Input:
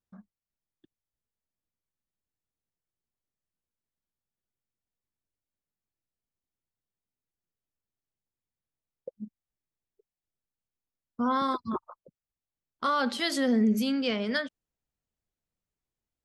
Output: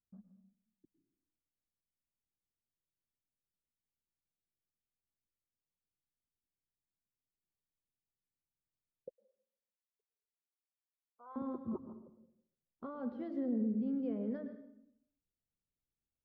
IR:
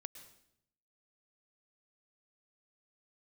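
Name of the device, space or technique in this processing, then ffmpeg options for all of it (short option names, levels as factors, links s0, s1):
television next door: -filter_complex "[0:a]acompressor=threshold=0.0501:ratio=6,lowpass=460[s0];[1:a]atrim=start_sample=2205[s1];[s0][s1]afir=irnorm=-1:irlink=0,asettb=1/sr,asplit=3[s2][s3][s4];[s2]atrim=end=9.134[s5];[s3]atrim=start=9.13:end=11.36,asetpts=PTS-STARTPTS,afade=t=in:d=0.004:c=qsin,afade=t=out:st=2.226:d=0.004:c=qsin,highpass=f=770:w=0.5412,highpass=f=770:w=1.3066[s6];[s4]atrim=start=11.356[s7];[s5][s6]acrossfade=d=0.004:c1=hsin:c2=qsin[s8];[s8][s7]acrossfade=d=0.004:c1=qsin:c2=hsin"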